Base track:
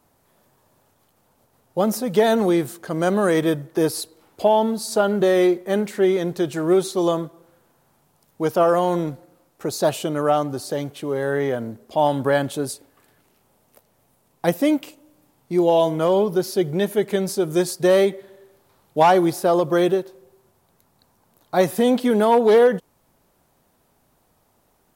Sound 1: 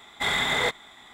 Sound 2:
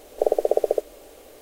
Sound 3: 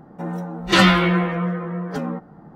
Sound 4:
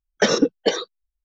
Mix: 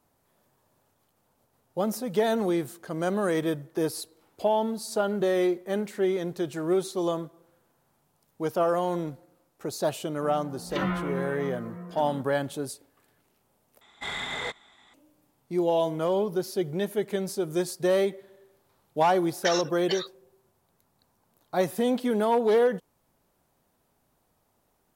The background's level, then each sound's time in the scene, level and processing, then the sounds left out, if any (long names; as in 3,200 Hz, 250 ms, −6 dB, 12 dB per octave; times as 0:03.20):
base track −7.5 dB
0:10.03: mix in 3 −13.5 dB + treble cut that deepens with the level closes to 1,500 Hz, closed at −13 dBFS
0:13.81: overwrite with 1 −8.5 dB + low-pass filter 10,000 Hz
0:19.23: mix in 4 −6.5 dB + high-pass filter 1,200 Hz
not used: 2